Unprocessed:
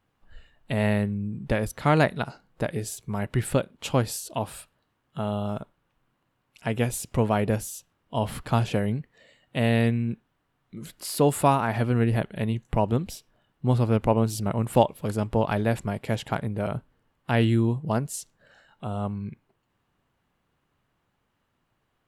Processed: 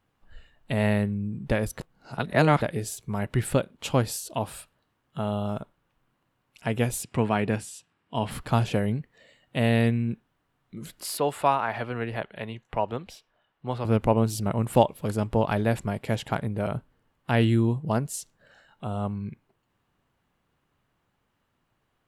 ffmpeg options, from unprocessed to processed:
-filter_complex "[0:a]asettb=1/sr,asplit=3[a][b][c];[a]atrim=end=7.034[d];[b]atrim=start=7.03:end=8.31,asetpts=PTS-STARTPTS,afade=t=in:d=0.004:c=qsin,afade=t=out:st=1.276:d=0.004:c=qsin,highpass=110,equalizer=f=560:t=q:w=4:g=-6,equalizer=f=1.7k:t=q:w=4:g=3,equalizer=f=2.5k:t=q:w=4:g=4,equalizer=f=6.3k:t=q:w=4:g=-8,lowpass=f=9.2k:w=0.5412,lowpass=f=9.2k:w=1.3066[e];[c]atrim=start=8.306[f];[d][e]acrossfade=d=0.004:c1=hsin:c2=qsin[g];[g][f]acrossfade=d=0.004:c1=qsin:c2=hsin,asettb=1/sr,asplit=3[h][i][j];[h]atrim=end=11.174[k];[i]atrim=start=11.17:end=13.85,asetpts=PTS-STARTPTS,afade=t=in:d=0.004:c=qsin,afade=t=out:st=2.676:d=0.004:c=qsin,acrossover=split=480 4500:gain=0.251 1 0.224[l][m][n];[l][m][n]amix=inputs=3:normalize=0[o];[j]atrim=start=13.846[p];[k][o]acrossfade=d=0.004:c1=hsin:c2=qsin[q];[q][p]acrossfade=d=0.004:c1=qsin:c2=hsin,asplit=3[r][s][t];[r]atrim=end=1.802[u];[s]atrim=start=1.798:end=2.622,asetpts=PTS-STARTPTS,areverse[v];[t]atrim=start=2.618[w];[u][v]acrossfade=d=0.004:c1=hsin:c2=hsin[x];[x][w]acrossfade=d=0.004:c1=hsin:c2=hsin"

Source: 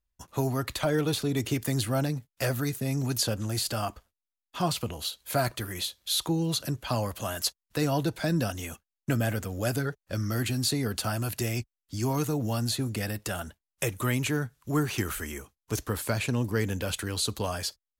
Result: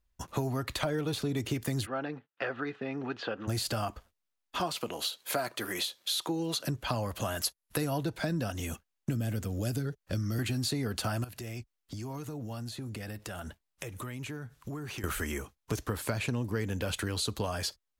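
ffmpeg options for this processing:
-filter_complex "[0:a]asplit=3[a][b][c];[a]afade=t=out:st=1.85:d=0.02[d];[b]highpass=460,equalizer=f=610:t=q:w=4:g=-9,equalizer=f=970:t=q:w=4:g=-5,equalizer=f=2.2k:t=q:w=4:g=-7,lowpass=f=2.7k:w=0.5412,lowpass=f=2.7k:w=1.3066,afade=t=in:st=1.85:d=0.02,afade=t=out:st=3.47:d=0.02[e];[c]afade=t=in:st=3.47:d=0.02[f];[d][e][f]amix=inputs=3:normalize=0,asettb=1/sr,asplit=3[g][h][i];[g]atrim=end=4.604[j];[h]atrim=start=4.6:end=6.67,asetpts=PTS-STARTPTS,afade=t=in:d=0.004:c=qsin,afade=t=out:st=2.066:d=0.004:c=qsin,highpass=280[k];[i]atrim=start=6.666[l];[j][k]acrossfade=d=0.004:c1=hsin:c2=qsin[m];[m][l]acrossfade=d=0.004:c1=qsin:c2=hsin,asettb=1/sr,asplit=3[n][o][p];[n]atrim=end=7.454[q];[o]atrim=start=7.45:end=7.98,asetpts=PTS-STARTPTS,afade=t=in:d=0.004:c=qsin,afade=t=out:st=0.526:d=0.004:c=qsin,equalizer=f=11k:t=o:w=0.42:g=13[r];[p]atrim=start=7.976[s];[q][r]acrossfade=d=0.004:c1=hsin:c2=qsin[t];[t][s]acrossfade=d=0.004:c1=qsin:c2=hsin,asettb=1/sr,asplit=3[u][v][w];[u]atrim=end=8.604[x];[v]atrim=start=8.6:end=10.39,asetpts=PTS-STARTPTS,afade=t=in:d=0.004:c=qsin,afade=t=out:st=1.786:d=0.004:c=qsin,acrossover=split=410|3000[y][z][aa];[z]acompressor=threshold=-52dB:ratio=2:attack=3.2:release=140:knee=2.83:detection=peak[ab];[y][ab][aa]amix=inputs=3:normalize=0[ac];[w]atrim=start=10.386[ad];[x][ac]acrossfade=d=0.004:c1=hsin:c2=qsin[ae];[ae][ad]acrossfade=d=0.004:c1=qsin:c2=hsin,asettb=1/sr,asplit=3[af][ag][ah];[af]atrim=end=11.244[ai];[ag]atrim=start=11.24:end=15.04,asetpts=PTS-STARTPTS,afade=t=in:d=0.004:c=qsin,afade=t=out:st=3.796:d=0.004:c=qsin,acompressor=threshold=-42dB:ratio=12:attack=3.2:release=140:knee=1:detection=peak[aj];[ah]atrim=start=15.036[ak];[ai][aj]acrossfade=d=0.004:c1=hsin:c2=qsin[al];[al][ak]acrossfade=d=0.004:c1=qsin:c2=hsin,highshelf=f=5.4k:g=-6,acompressor=threshold=-37dB:ratio=4,volume=6.5dB"

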